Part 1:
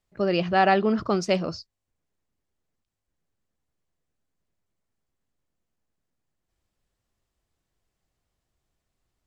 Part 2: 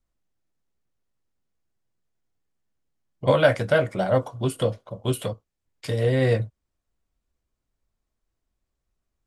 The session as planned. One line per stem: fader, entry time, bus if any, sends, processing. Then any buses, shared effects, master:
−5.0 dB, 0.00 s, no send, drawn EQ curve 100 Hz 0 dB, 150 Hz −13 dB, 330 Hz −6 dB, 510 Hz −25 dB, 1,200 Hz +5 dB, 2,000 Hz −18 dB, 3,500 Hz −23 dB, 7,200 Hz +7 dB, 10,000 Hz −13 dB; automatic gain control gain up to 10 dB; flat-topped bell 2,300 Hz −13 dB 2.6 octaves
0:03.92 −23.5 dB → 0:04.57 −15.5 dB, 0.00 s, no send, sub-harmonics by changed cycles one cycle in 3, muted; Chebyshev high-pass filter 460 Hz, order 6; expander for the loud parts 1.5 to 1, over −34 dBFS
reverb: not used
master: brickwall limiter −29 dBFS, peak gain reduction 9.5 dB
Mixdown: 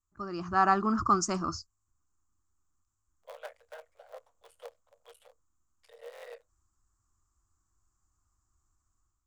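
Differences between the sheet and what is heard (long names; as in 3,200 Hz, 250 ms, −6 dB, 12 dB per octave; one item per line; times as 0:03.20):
stem 1: missing flat-topped bell 2,300 Hz −13 dB 2.6 octaves
master: missing brickwall limiter −29 dBFS, peak gain reduction 9.5 dB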